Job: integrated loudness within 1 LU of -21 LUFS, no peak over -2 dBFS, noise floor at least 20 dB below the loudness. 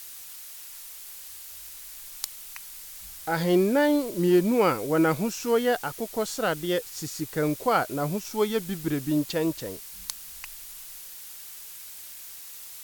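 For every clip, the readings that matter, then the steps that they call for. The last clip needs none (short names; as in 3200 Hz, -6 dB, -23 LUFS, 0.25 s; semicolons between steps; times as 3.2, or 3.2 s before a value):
noise floor -43 dBFS; noise floor target -46 dBFS; loudness -26.0 LUFS; peak -8.0 dBFS; loudness target -21.0 LUFS
-> noise print and reduce 6 dB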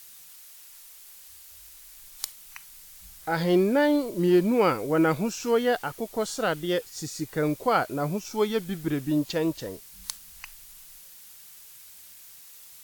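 noise floor -49 dBFS; loudness -26.0 LUFS; peak -8.5 dBFS; loudness target -21.0 LUFS
-> gain +5 dB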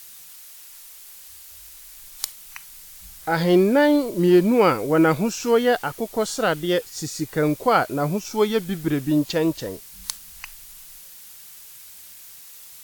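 loudness -21.0 LUFS; peak -3.5 dBFS; noise floor -44 dBFS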